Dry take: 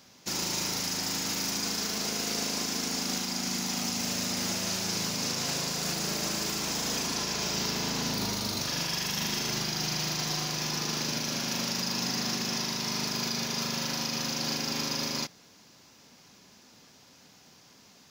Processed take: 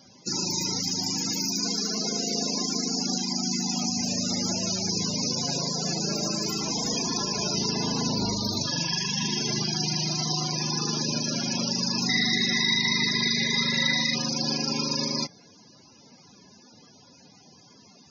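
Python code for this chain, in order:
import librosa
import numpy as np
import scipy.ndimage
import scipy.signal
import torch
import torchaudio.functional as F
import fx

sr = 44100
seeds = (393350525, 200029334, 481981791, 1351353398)

y = fx.small_body(x, sr, hz=(2000.0, 3800.0), ring_ms=30, db=18, at=(12.09, 14.15))
y = fx.spec_topn(y, sr, count=64)
y = y * 10.0 ** (6.0 / 20.0)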